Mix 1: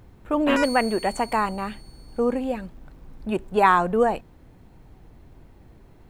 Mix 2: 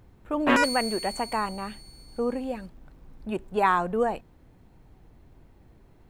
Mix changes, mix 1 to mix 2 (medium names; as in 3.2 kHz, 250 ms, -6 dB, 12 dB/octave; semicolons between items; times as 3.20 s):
speech -5.0 dB; background +3.5 dB